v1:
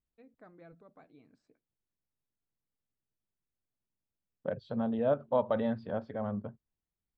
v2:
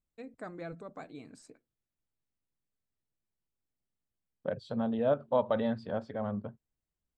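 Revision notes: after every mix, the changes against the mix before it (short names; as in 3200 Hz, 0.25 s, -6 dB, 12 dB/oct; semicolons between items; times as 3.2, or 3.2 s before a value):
first voice +12.0 dB; master: remove air absorption 190 m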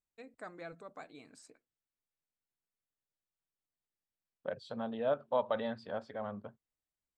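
master: add low shelf 400 Hz -12 dB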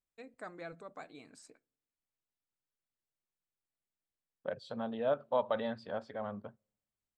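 reverb: on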